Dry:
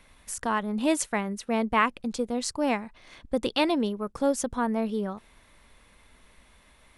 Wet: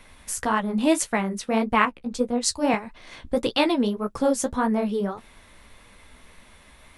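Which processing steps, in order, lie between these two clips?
in parallel at -3 dB: compression, threshold -34 dBFS, peak gain reduction 15.5 dB; on the sum: flange 1.7 Hz, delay 8 ms, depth 8.7 ms, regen -26%; 1.85–2.74 s: three bands expanded up and down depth 100%; trim +5.5 dB

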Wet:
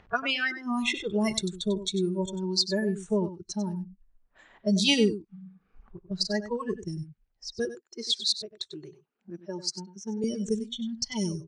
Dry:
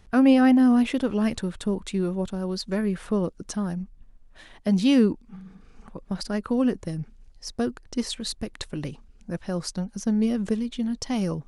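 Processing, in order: spectral noise reduction 25 dB; 7.65–10.24 s: high-pass 300 Hz 12 dB/octave; level-controlled noise filter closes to 1.5 kHz, open at -22.5 dBFS; low-pass 7.3 kHz 12 dB/octave; tilt EQ +3 dB/octave; upward compressor, threshold -44 dBFS; delay 96 ms -12.5 dB; trim +4 dB

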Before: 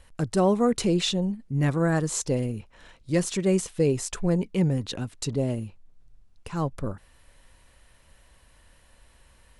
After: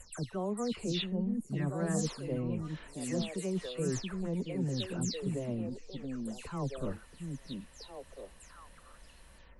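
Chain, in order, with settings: delay that grows with frequency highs early, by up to 209 ms; reverse; compression 5:1, threshold -33 dBFS, peak gain reduction 14.5 dB; reverse; repeats whose band climbs or falls 677 ms, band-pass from 220 Hz, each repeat 1.4 oct, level -0.5 dB

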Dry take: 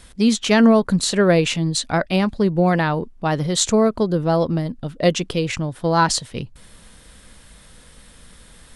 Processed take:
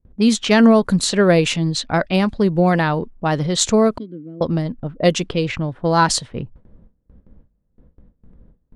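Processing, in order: 3.98–4.41 s: vowel filter i; level-controlled noise filter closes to 320 Hz, open at -15 dBFS; gate with hold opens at -38 dBFS; trim +1.5 dB

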